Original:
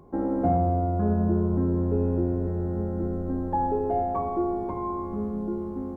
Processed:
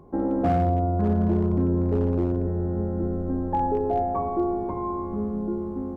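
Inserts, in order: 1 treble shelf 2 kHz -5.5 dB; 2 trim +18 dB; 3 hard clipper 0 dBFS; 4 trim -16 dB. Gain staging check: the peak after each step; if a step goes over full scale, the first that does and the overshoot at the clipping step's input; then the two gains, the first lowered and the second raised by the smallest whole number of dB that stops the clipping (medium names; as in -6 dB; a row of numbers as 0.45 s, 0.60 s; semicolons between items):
-11.5 dBFS, +6.5 dBFS, 0.0 dBFS, -16.0 dBFS; step 2, 6.5 dB; step 2 +11 dB, step 4 -9 dB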